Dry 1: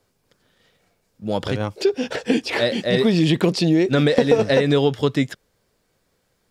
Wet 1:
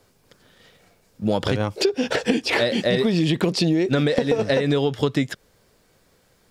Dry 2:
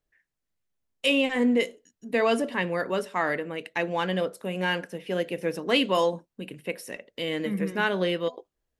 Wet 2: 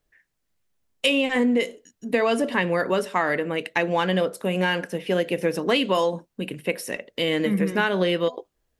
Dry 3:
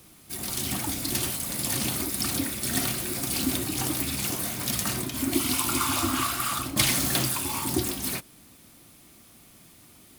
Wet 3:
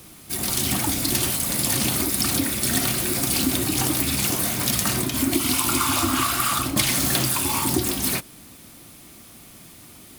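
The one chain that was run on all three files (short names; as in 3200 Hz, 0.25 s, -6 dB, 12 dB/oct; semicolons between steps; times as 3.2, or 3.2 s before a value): compressor 6:1, threshold -25 dBFS; gain +7.5 dB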